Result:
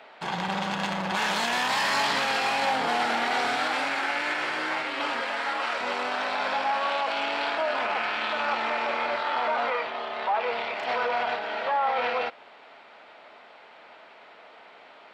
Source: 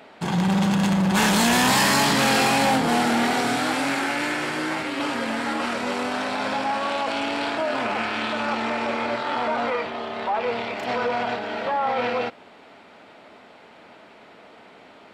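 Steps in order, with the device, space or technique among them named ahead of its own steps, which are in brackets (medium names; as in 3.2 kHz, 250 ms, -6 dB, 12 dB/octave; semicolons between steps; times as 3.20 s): DJ mixer with the lows and highs turned down (three-band isolator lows -15 dB, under 490 Hz, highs -14 dB, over 5.3 kHz; peak limiter -16.5 dBFS, peak gain reduction 8 dB); 5.21–5.81 s: peaking EQ 180 Hz -11.5 dB 1.1 oct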